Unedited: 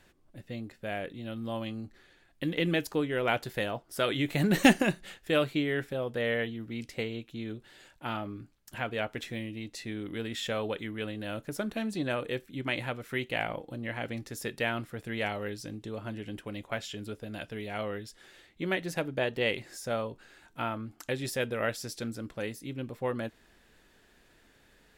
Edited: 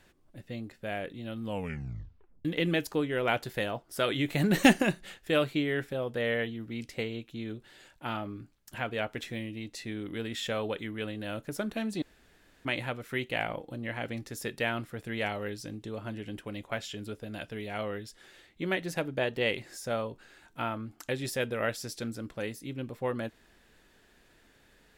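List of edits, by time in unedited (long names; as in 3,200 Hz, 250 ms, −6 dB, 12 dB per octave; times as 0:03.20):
0:01.43: tape stop 1.02 s
0:12.02–0:12.65: fill with room tone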